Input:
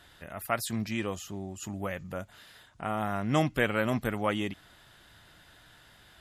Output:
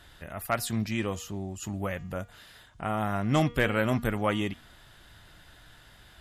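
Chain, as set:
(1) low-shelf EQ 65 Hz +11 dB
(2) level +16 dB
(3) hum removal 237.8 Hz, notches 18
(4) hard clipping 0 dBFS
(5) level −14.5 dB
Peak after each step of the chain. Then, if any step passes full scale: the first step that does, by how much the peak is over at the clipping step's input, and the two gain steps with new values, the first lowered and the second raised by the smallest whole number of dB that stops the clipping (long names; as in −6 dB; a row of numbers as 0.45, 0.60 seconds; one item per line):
−12.0, +4.0, +4.0, 0.0, −14.5 dBFS
step 2, 4.0 dB
step 2 +12 dB, step 5 −10.5 dB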